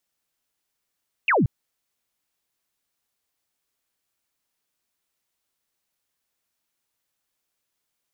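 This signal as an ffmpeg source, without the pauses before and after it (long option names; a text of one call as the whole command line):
ffmpeg -f lavfi -i "aevalsrc='0.158*clip(t/0.002,0,1)*clip((0.18-t)/0.002,0,1)*sin(2*PI*2900*0.18/log(100/2900)*(exp(log(100/2900)*t/0.18)-1))':duration=0.18:sample_rate=44100" out.wav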